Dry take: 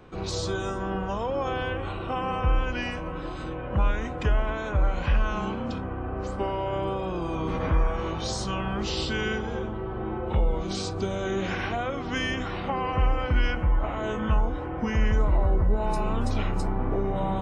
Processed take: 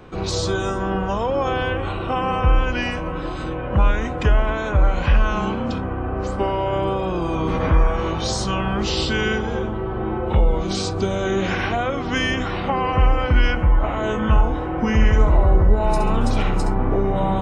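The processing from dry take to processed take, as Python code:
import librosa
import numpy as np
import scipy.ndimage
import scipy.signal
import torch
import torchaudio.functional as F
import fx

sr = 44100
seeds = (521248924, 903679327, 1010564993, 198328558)

y = fx.room_flutter(x, sr, wall_m=11.7, rt60_s=0.46, at=(14.32, 16.72), fade=0.02)
y = F.gain(torch.from_numpy(y), 7.0).numpy()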